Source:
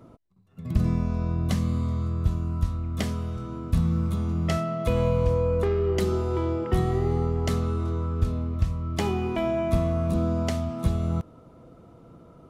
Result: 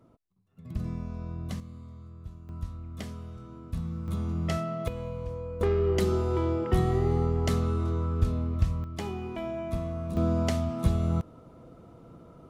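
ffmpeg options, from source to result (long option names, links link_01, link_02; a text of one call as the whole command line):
ffmpeg -i in.wav -af "asetnsamples=nb_out_samples=441:pad=0,asendcmd='1.6 volume volume -18.5dB;2.49 volume volume -10.5dB;4.08 volume volume -4dB;4.88 volume volume -13dB;5.61 volume volume -1dB;8.84 volume volume -8.5dB;10.17 volume volume -0.5dB',volume=-10dB" out.wav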